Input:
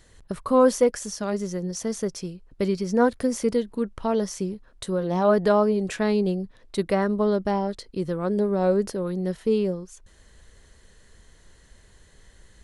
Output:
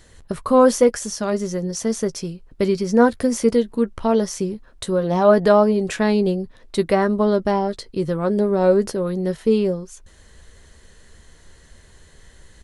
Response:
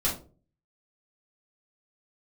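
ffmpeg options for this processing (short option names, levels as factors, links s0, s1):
-filter_complex "[0:a]asplit=2[s0][s1];[s1]adelay=13,volume=0.266[s2];[s0][s2]amix=inputs=2:normalize=0,volume=1.78"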